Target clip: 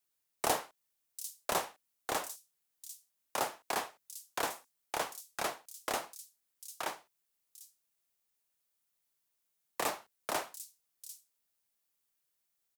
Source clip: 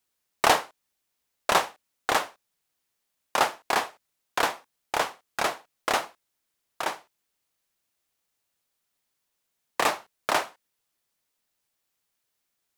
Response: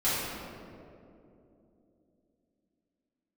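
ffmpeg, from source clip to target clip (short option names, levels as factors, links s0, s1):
-filter_complex "[0:a]highshelf=f=7700:g=7,acrossover=split=230|760|5700[s0][s1][s2][s3];[s2]alimiter=limit=0.126:level=0:latency=1:release=138[s4];[s3]aecho=1:1:747:0.562[s5];[s0][s1][s4][s5]amix=inputs=4:normalize=0,volume=0.398"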